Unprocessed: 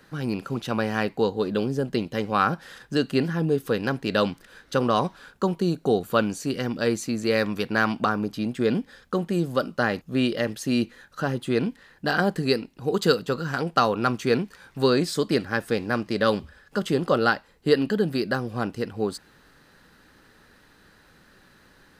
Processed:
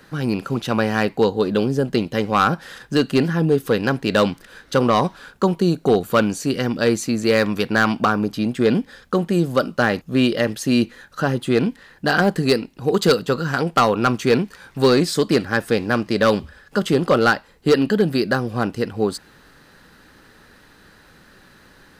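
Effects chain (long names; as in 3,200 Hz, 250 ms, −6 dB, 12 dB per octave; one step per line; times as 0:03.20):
gain into a clipping stage and back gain 14.5 dB
level +6 dB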